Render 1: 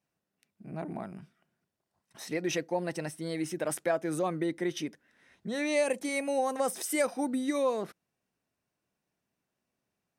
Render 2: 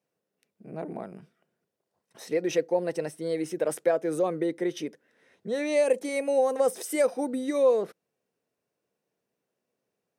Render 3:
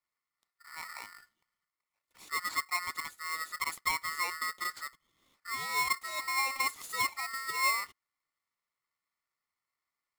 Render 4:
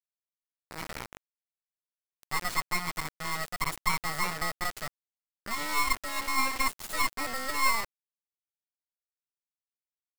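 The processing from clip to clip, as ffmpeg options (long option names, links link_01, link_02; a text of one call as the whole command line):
ffmpeg -i in.wav -af "highpass=110,equalizer=frequency=470:width=2.2:gain=12,volume=-1.5dB" out.wav
ffmpeg -i in.wav -af "aeval=exprs='val(0)*sgn(sin(2*PI*1600*n/s))':channel_layout=same,volume=-8dB" out.wav
ffmpeg -i in.wav -af "acrusher=bits=4:dc=4:mix=0:aa=0.000001,volume=7dB" out.wav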